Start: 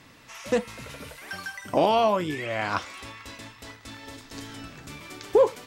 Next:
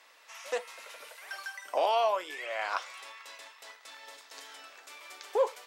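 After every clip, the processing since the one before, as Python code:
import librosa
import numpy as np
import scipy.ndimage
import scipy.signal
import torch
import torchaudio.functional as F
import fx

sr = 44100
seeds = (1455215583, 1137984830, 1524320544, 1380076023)

y = scipy.signal.sosfilt(scipy.signal.butter(4, 530.0, 'highpass', fs=sr, output='sos'), x)
y = y * librosa.db_to_amplitude(-4.5)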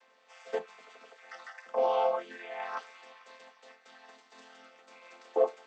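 y = fx.chord_vocoder(x, sr, chord='major triad', root=53)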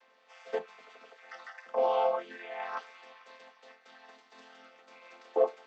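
y = scipy.signal.sosfilt(scipy.signal.butter(2, 5700.0, 'lowpass', fs=sr, output='sos'), x)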